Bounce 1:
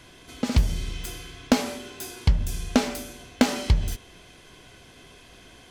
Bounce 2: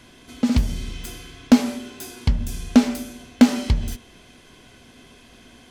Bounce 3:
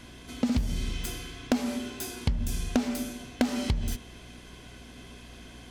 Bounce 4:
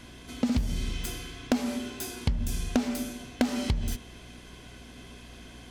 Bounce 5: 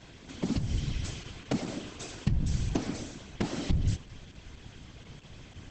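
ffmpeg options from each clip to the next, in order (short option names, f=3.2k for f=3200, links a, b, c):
-af "equalizer=f=240:w=5.6:g=11"
-af "asoftclip=type=tanh:threshold=-9dB,acompressor=threshold=-23dB:ratio=6,aeval=exprs='val(0)+0.00316*(sin(2*PI*60*n/s)+sin(2*PI*2*60*n/s)/2+sin(2*PI*3*60*n/s)/3+sin(2*PI*4*60*n/s)/4+sin(2*PI*5*60*n/s)/5)':c=same"
-af anull
-af "asubboost=boost=2.5:cutoff=120,afftfilt=real='hypot(re,im)*cos(2*PI*random(0))':imag='hypot(re,im)*sin(2*PI*random(1))':win_size=512:overlap=0.75,volume=3dB" -ar 48000 -c:a libopus -b:a 10k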